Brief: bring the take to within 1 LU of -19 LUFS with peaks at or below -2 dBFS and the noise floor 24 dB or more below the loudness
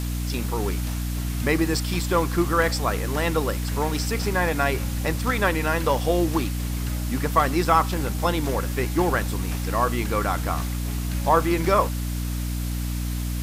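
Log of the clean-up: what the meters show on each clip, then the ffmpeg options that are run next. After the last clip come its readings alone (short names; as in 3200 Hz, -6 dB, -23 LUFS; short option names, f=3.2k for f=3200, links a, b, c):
hum 60 Hz; harmonics up to 300 Hz; hum level -25 dBFS; noise floor -27 dBFS; noise floor target -48 dBFS; loudness -24.0 LUFS; peak -5.0 dBFS; loudness target -19.0 LUFS
-> -af "bandreject=f=60:t=h:w=4,bandreject=f=120:t=h:w=4,bandreject=f=180:t=h:w=4,bandreject=f=240:t=h:w=4,bandreject=f=300:t=h:w=4"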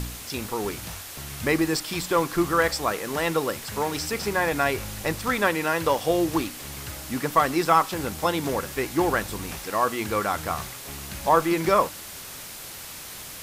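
hum none; noise floor -39 dBFS; noise floor target -49 dBFS
-> -af "afftdn=nr=10:nf=-39"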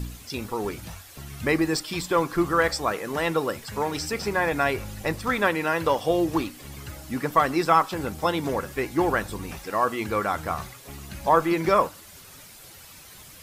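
noise floor -47 dBFS; noise floor target -49 dBFS
-> -af "afftdn=nr=6:nf=-47"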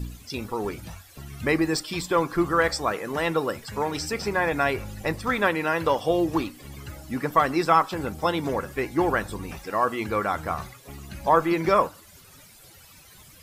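noise floor -51 dBFS; loudness -25.5 LUFS; peak -6.5 dBFS; loudness target -19.0 LUFS
-> -af "volume=6.5dB,alimiter=limit=-2dB:level=0:latency=1"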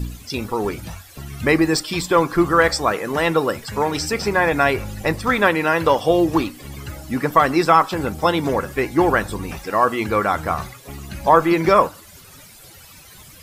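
loudness -19.0 LUFS; peak -2.0 dBFS; noise floor -44 dBFS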